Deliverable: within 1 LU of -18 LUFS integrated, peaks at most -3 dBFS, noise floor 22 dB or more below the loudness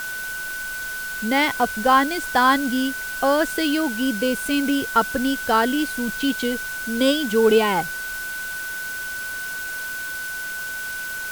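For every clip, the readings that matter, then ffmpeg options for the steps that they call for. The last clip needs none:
steady tone 1.5 kHz; tone level -28 dBFS; noise floor -30 dBFS; noise floor target -44 dBFS; loudness -22.0 LUFS; peak level -4.5 dBFS; loudness target -18.0 LUFS
-> -af "bandreject=f=1500:w=30"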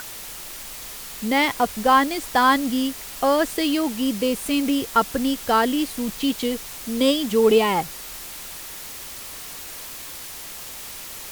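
steady tone not found; noise floor -37 dBFS; noise floor target -43 dBFS
-> -af "afftdn=nr=6:nf=-37"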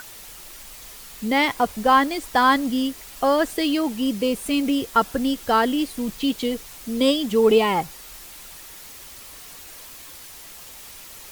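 noise floor -42 dBFS; noise floor target -44 dBFS
-> -af "afftdn=nr=6:nf=-42"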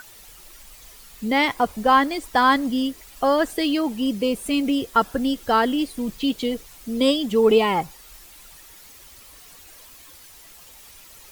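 noise floor -47 dBFS; loudness -21.5 LUFS; peak level -5.5 dBFS; loudness target -18.0 LUFS
-> -af "volume=1.5,alimiter=limit=0.708:level=0:latency=1"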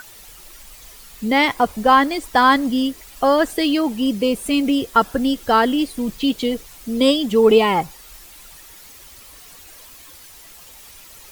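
loudness -18.0 LUFS; peak level -3.0 dBFS; noise floor -43 dBFS

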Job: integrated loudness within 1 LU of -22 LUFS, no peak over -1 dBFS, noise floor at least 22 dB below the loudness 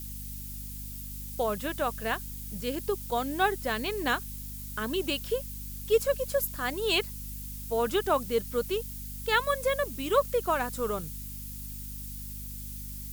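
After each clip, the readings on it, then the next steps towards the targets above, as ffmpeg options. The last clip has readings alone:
hum 50 Hz; highest harmonic 250 Hz; hum level -39 dBFS; noise floor -40 dBFS; noise floor target -53 dBFS; loudness -31.0 LUFS; peak level -11.0 dBFS; loudness target -22.0 LUFS
-> -af "bandreject=f=50:t=h:w=6,bandreject=f=100:t=h:w=6,bandreject=f=150:t=h:w=6,bandreject=f=200:t=h:w=6,bandreject=f=250:t=h:w=6"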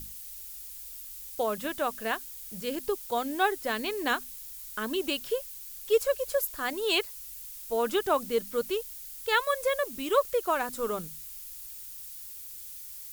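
hum not found; noise floor -43 dBFS; noise floor target -53 dBFS
-> -af "afftdn=nr=10:nf=-43"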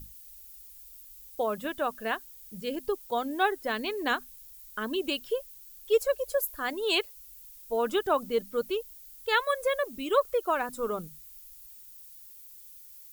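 noise floor -50 dBFS; noise floor target -52 dBFS
-> -af "afftdn=nr=6:nf=-50"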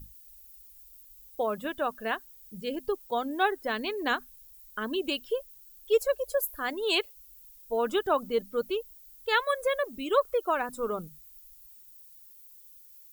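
noise floor -53 dBFS; loudness -30.0 LUFS; peak level -11.5 dBFS; loudness target -22.0 LUFS
-> -af "volume=2.51"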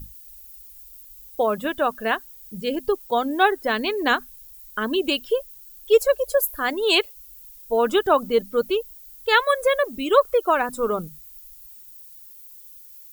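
loudness -22.0 LUFS; peak level -3.5 dBFS; noise floor -45 dBFS

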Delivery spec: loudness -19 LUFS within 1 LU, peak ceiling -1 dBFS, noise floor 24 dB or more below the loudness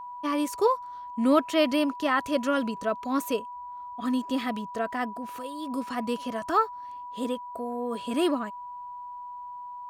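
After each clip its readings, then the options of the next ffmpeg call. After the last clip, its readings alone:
steady tone 980 Hz; tone level -37 dBFS; loudness -28.5 LUFS; peak level -9.5 dBFS; loudness target -19.0 LUFS
-> -af "bandreject=f=980:w=30"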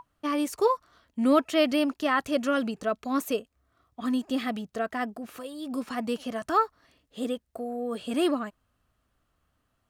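steady tone not found; loudness -28.5 LUFS; peak level -9.5 dBFS; loudness target -19.0 LUFS
-> -af "volume=2.99,alimiter=limit=0.891:level=0:latency=1"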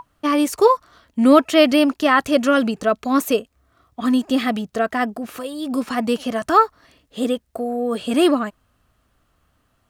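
loudness -19.0 LUFS; peak level -1.0 dBFS; noise floor -66 dBFS

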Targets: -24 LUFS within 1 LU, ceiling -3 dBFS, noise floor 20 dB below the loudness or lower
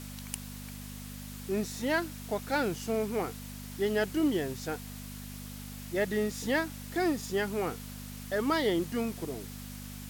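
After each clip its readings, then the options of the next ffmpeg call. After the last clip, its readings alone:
hum 50 Hz; highest harmonic 250 Hz; hum level -41 dBFS; noise floor -43 dBFS; noise floor target -53 dBFS; loudness -33.0 LUFS; peak level -15.0 dBFS; loudness target -24.0 LUFS
-> -af "bandreject=f=50:t=h:w=4,bandreject=f=100:t=h:w=4,bandreject=f=150:t=h:w=4,bandreject=f=200:t=h:w=4,bandreject=f=250:t=h:w=4"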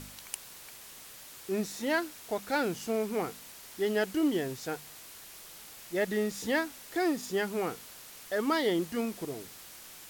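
hum not found; noise floor -49 dBFS; noise floor target -53 dBFS
-> -af "afftdn=nr=6:nf=-49"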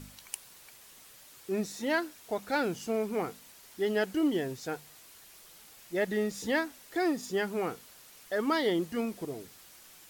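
noise floor -55 dBFS; loudness -32.5 LUFS; peak level -15.5 dBFS; loudness target -24.0 LUFS
-> -af "volume=2.66"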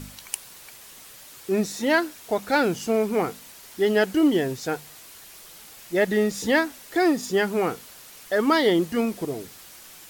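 loudness -24.0 LUFS; peak level -7.0 dBFS; noise floor -46 dBFS

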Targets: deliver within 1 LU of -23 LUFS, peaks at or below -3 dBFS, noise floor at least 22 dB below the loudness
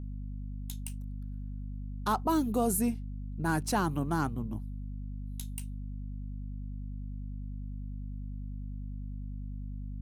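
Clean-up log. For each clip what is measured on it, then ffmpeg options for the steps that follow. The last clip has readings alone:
hum 50 Hz; highest harmonic 250 Hz; hum level -36 dBFS; loudness -35.5 LUFS; peak level -17.5 dBFS; loudness target -23.0 LUFS
-> -af "bandreject=f=50:t=h:w=6,bandreject=f=100:t=h:w=6,bandreject=f=150:t=h:w=6,bandreject=f=200:t=h:w=6,bandreject=f=250:t=h:w=6"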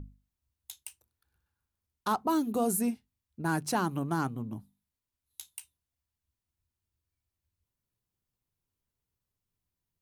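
hum not found; loudness -31.5 LUFS; peak level -18.0 dBFS; loudness target -23.0 LUFS
-> -af "volume=2.66"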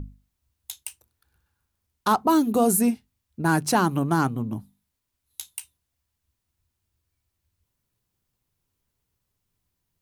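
loudness -23.0 LUFS; peak level -9.5 dBFS; noise floor -81 dBFS

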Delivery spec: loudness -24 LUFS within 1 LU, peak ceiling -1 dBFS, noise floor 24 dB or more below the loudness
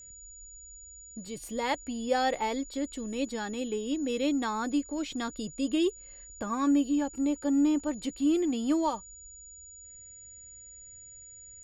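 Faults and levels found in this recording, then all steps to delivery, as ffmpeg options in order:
steady tone 6.9 kHz; tone level -47 dBFS; loudness -30.0 LUFS; peak level -16.0 dBFS; loudness target -24.0 LUFS
-> -af "bandreject=f=6900:w=30"
-af "volume=2"

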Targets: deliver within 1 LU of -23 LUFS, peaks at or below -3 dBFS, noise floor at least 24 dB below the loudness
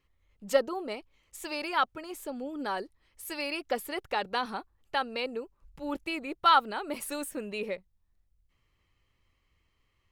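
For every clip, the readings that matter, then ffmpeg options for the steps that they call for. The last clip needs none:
loudness -32.0 LUFS; peak level -10.5 dBFS; loudness target -23.0 LUFS
-> -af "volume=2.82,alimiter=limit=0.708:level=0:latency=1"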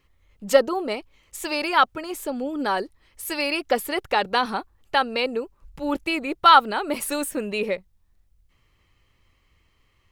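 loudness -23.5 LUFS; peak level -3.0 dBFS; noise floor -65 dBFS

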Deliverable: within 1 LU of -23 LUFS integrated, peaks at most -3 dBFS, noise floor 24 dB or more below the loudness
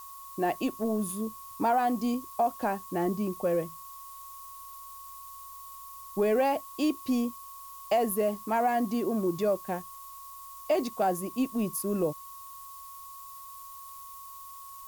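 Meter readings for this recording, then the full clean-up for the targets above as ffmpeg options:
steady tone 1.1 kHz; tone level -45 dBFS; noise floor -46 dBFS; noise floor target -54 dBFS; loudness -29.5 LUFS; peak level -15.5 dBFS; loudness target -23.0 LUFS
-> -af "bandreject=f=1100:w=30"
-af "afftdn=nr=8:nf=-46"
-af "volume=2.11"

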